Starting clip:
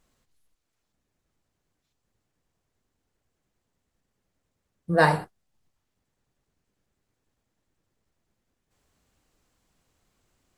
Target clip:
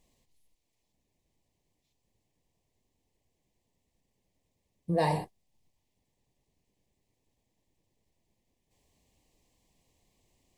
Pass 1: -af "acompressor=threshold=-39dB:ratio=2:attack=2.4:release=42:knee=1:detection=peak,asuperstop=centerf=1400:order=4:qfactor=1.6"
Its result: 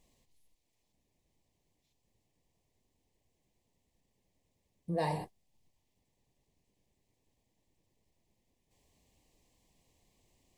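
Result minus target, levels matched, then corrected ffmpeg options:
compressor: peak gain reduction +6 dB
-af "acompressor=threshold=-27.5dB:ratio=2:attack=2.4:release=42:knee=1:detection=peak,asuperstop=centerf=1400:order=4:qfactor=1.6"

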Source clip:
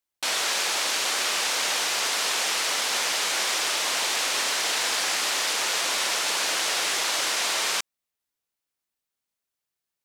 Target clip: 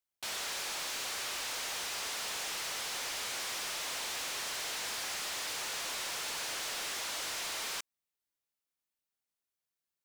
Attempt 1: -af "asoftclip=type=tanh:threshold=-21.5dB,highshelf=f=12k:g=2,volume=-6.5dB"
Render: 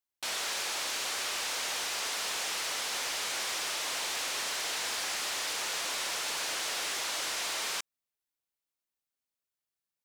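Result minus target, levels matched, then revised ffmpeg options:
soft clip: distortion -7 dB
-af "asoftclip=type=tanh:threshold=-29dB,highshelf=f=12k:g=2,volume=-6.5dB"

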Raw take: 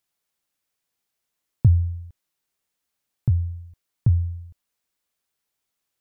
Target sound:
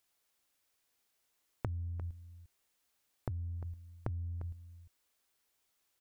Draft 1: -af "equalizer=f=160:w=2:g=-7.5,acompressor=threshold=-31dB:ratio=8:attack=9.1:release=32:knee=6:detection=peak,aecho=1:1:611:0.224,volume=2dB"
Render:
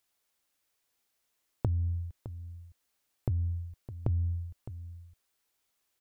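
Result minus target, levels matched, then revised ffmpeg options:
echo 0.261 s late; compressor: peak gain reduction -9 dB
-af "equalizer=f=160:w=2:g=-7.5,acompressor=threshold=-41.5dB:ratio=8:attack=9.1:release=32:knee=6:detection=peak,aecho=1:1:350:0.224,volume=2dB"

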